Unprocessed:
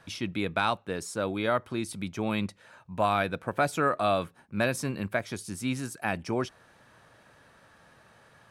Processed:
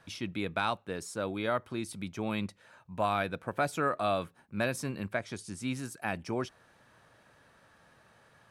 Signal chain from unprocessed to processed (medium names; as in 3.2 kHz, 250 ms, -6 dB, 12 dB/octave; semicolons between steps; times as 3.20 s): 5.12–5.62 s: low-pass 9.9 kHz 24 dB/octave; trim -4 dB